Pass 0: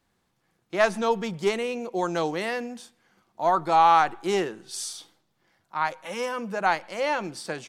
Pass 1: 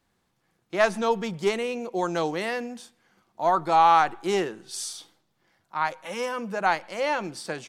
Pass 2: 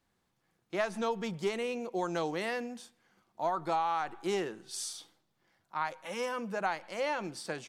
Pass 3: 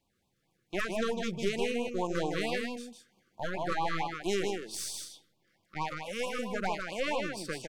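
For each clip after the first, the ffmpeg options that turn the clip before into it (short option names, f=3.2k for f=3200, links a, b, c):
-af anull
-af "acompressor=threshold=-22dB:ratio=12,volume=-5dB"
-af "aeval=exprs='0.141*(cos(1*acos(clip(val(0)/0.141,-1,1)))-cos(1*PI/2))+0.02*(cos(6*acos(clip(val(0)/0.141,-1,1)))-cos(6*PI/2))':c=same,aecho=1:1:156:0.596,afftfilt=real='re*(1-between(b*sr/1024,760*pow(1700/760,0.5+0.5*sin(2*PI*4.5*pts/sr))/1.41,760*pow(1700/760,0.5+0.5*sin(2*PI*4.5*pts/sr))*1.41))':imag='im*(1-between(b*sr/1024,760*pow(1700/760,0.5+0.5*sin(2*PI*4.5*pts/sr))/1.41,760*pow(1700/760,0.5+0.5*sin(2*PI*4.5*pts/sr))*1.41))':win_size=1024:overlap=0.75"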